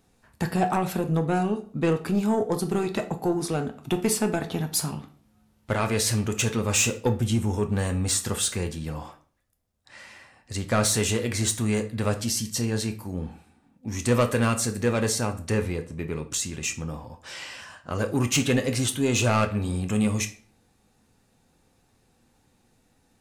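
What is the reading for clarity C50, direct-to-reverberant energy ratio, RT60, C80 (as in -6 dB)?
13.5 dB, 6.0 dB, 0.45 s, 19.0 dB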